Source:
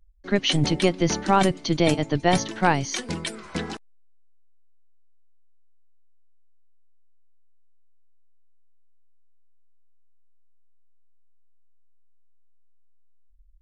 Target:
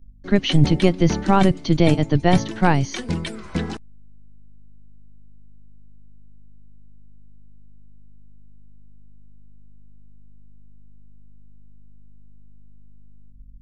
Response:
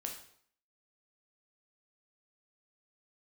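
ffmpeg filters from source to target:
-filter_complex "[0:a]lowshelf=f=220:g=11.5,aeval=exprs='val(0)+0.00282*(sin(2*PI*50*n/s)+sin(2*PI*2*50*n/s)/2+sin(2*PI*3*50*n/s)/3+sin(2*PI*4*50*n/s)/4+sin(2*PI*5*50*n/s)/5)':c=same,acrossover=split=4400[a][b];[b]acompressor=threshold=-37dB:ratio=4:attack=1:release=60[c];[a][c]amix=inputs=2:normalize=0"

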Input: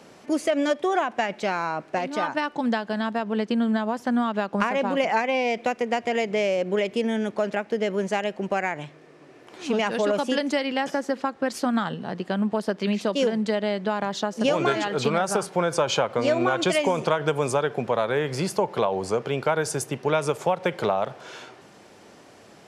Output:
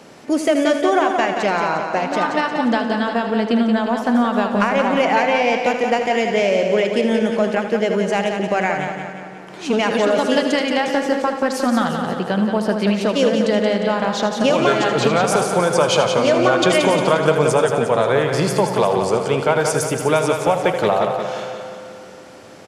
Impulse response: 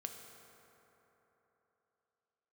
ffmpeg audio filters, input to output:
-filter_complex "[0:a]acontrast=44,aecho=1:1:177|354|531|708|885|1062|1239:0.473|0.251|0.133|0.0704|0.0373|0.0198|0.0105,asplit=2[a][b];[1:a]atrim=start_sample=2205,asetrate=48510,aresample=44100,adelay=79[c];[b][c]afir=irnorm=-1:irlink=0,volume=-5dB[d];[a][d]amix=inputs=2:normalize=0"

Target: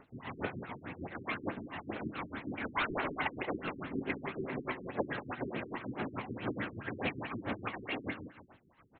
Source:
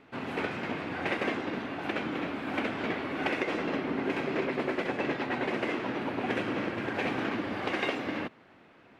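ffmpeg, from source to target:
-filter_complex "[0:a]equalizer=f=290:w=0.6:g=-7.5,asettb=1/sr,asplit=3[a][b][c];[a]atrim=end=0.674[d];[b]atrim=start=0.67:end=1.15,asetpts=PTS-STARTPTS,afade=t=in:d=0.004:c=qsin,afade=t=out:st=0.476:d=0.004:c=qsin,acrossover=split=540|1100[e][f][g];[e]acompressor=threshold=-43dB:ratio=4[h];[f]acompressor=threshold=-44dB:ratio=4[i];[g]acompressor=threshold=-47dB:ratio=4[j];[h][i][j]amix=inputs=3:normalize=0[k];[c]atrim=start=1.146[l];[d][k]acrossfade=d=0.004:c1=hsin:c2=qsin[m];[m][l]acrossfade=d=0.004:c1=qsin:c2=hsin,tremolo=f=6.8:d=0.76,asplit=3[n][o][p];[n]afade=t=out:st=2.75:d=0.02[q];[o]asplit=2[r][s];[s]highpass=f=720:p=1,volume=20dB,asoftclip=type=tanh:threshold=-24dB[t];[r][t]amix=inputs=2:normalize=0,lowpass=f=6.6k:p=1,volume=-6dB,afade=t=in:st=2.75:d=0.02,afade=t=out:st=3.21:d=0.02[u];[p]afade=t=in:st=3.21:d=0.02[v];[q][u][v]amix=inputs=3:normalize=0,aphaser=in_gain=1:out_gain=1:delay=1.1:decay=0.52:speed=2:type=triangular,aecho=1:1:182:0.237,afftfilt=real='re*lt(b*sr/1024,400*pow(4400/400,0.5+0.5*sin(2*PI*4.7*pts/sr)))':imag='im*lt(b*sr/1024,400*pow(4400/400,0.5+0.5*sin(2*PI*4.7*pts/sr)))':win_size=1024:overlap=0.75"

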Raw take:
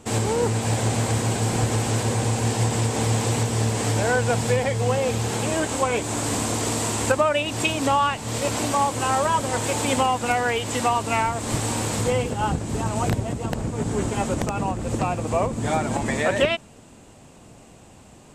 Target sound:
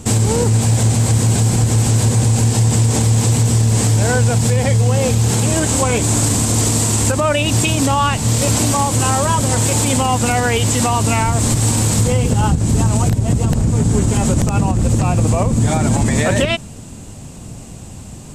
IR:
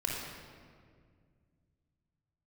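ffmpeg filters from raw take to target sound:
-af "bass=f=250:g=12,treble=f=4k:g=9,acompressor=threshold=-14dB:ratio=6,alimiter=limit=-12.5dB:level=0:latency=1:release=56,volume=6.5dB"

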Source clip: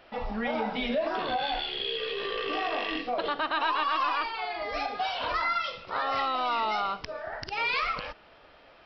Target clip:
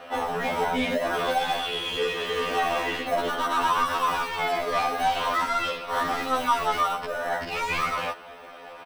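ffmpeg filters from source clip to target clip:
-filter_complex "[0:a]asplit=2[a][b];[b]highpass=f=720:p=1,volume=23dB,asoftclip=type=tanh:threshold=-15dB[c];[a][c]amix=inputs=2:normalize=0,lowpass=f=1.5k:p=1,volume=-6dB,asplit=2[d][e];[e]asetrate=35002,aresample=44100,atempo=1.25992,volume=-16dB[f];[d][f]amix=inputs=2:normalize=0,aecho=1:1:4.1:0.37,asplit=2[g][h];[h]acrusher=samples=19:mix=1:aa=0.000001,volume=-11.5dB[i];[g][i]amix=inputs=2:normalize=0,afftfilt=real='re*2*eq(mod(b,4),0)':imag='im*2*eq(mod(b,4),0)':win_size=2048:overlap=0.75"

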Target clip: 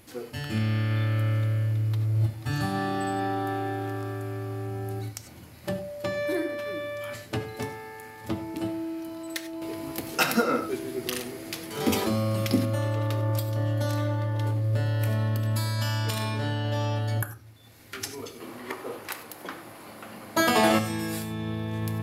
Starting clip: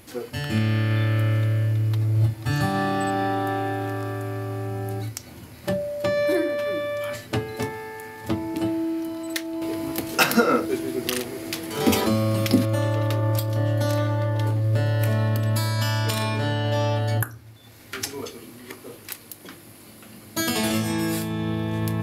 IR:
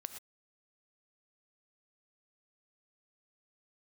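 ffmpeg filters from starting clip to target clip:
-filter_complex "[0:a]asettb=1/sr,asplit=3[a][b][c];[a]atrim=end=18.404[d];[b]atrim=start=18.4:end=20.79,asetpts=PTS-STARTPTS,afade=t=in:d=0.004:c=qsin,afade=t=out:st=2.386:d=0.004:c=qsin,equalizer=f=900:w=0.44:g=14.5[e];[c]atrim=start=20.786[f];[d][e]acrossfade=d=0.004:c1=hsin:c2=qsin[g];[g][f]acrossfade=d=0.004:c1=qsin:c2=hsin[h];[1:a]atrim=start_sample=2205,afade=t=out:st=0.15:d=0.01,atrim=end_sample=7056[i];[h][i]afir=irnorm=-1:irlink=0,volume=-1.5dB"

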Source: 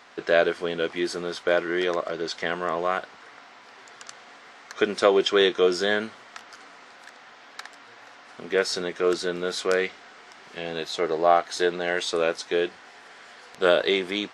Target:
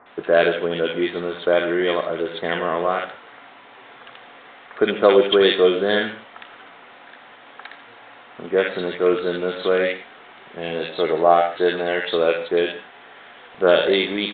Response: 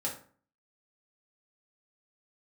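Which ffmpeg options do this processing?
-filter_complex "[0:a]acrossover=split=1500[a][b];[b]adelay=60[c];[a][c]amix=inputs=2:normalize=0,asplit=2[d][e];[1:a]atrim=start_sample=2205,atrim=end_sample=3969,adelay=82[f];[e][f]afir=irnorm=-1:irlink=0,volume=-13.5dB[g];[d][g]amix=inputs=2:normalize=0,aresample=8000,aresample=44100,volume=5dB"

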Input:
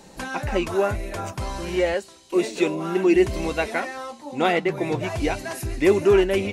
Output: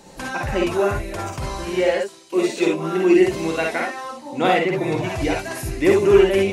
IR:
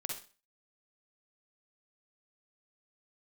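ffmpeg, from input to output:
-filter_complex "[0:a]asettb=1/sr,asplit=3[a][b][c];[a]atrim=end=1.664[d];[b]atrim=start=1.66:end=4.05,asetpts=PTS-STARTPTS,afade=t=in:d=0.004:c=qsin,afade=t=out:st=2.386:d=0.004:c=qsin,highpass=130[e];[c]atrim=start=4.046[f];[d][e]acrossfade=d=0.004:c1=hsin:c2=qsin[g];[g][f]acrossfade=d=0.004:c1=qsin:c2=hsin[h];[1:a]atrim=start_sample=2205,atrim=end_sample=3528[i];[h][i]afir=irnorm=-1:irlink=0,volume=3dB"

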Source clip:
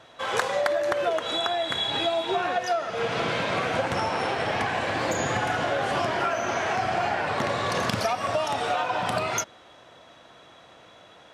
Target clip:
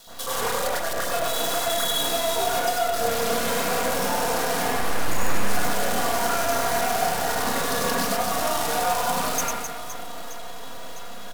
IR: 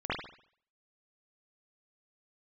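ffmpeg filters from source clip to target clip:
-filter_complex "[0:a]aecho=1:1:4.2:0.85,acompressor=threshold=-43dB:ratio=2.5,acrusher=bits=7:dc=4:mix=0:aa=0.000001,aexciter=amount=5.1:drive=6:freq=3.4k,asettb=1/sr,asplit=3[a][b][c];[a]atrim=end=4.694[d];[b]atrim=start=4.69:end=5.49,asetpts=PTS-STARTPTS,afade=t=in:d=0.004:c=qsin,afade=t=out:st=0.796:d=0.004:c=qsin,aeval=exprs='max(val(0),0)':c=same[e];[c]atrim=start=5.486[f];[d][e]acrossfade=d=0.004:c1=hsin:c2=qsin[g];[g][f]acrossfade=d=0.004:c1=qsin:c2=hsin,aecho=1:1:100|260|516|925.6|1581:0.631|0.398|0.251|0.158|0.1[h];[1:a]atrim=start_sample=2205,afade=t=out:st=0.16:d=0.01,atrim=end_sample=7497,asetrate=29988,aresample=44100[i];[h][i]afir=irnorm=-1:irlink=0"

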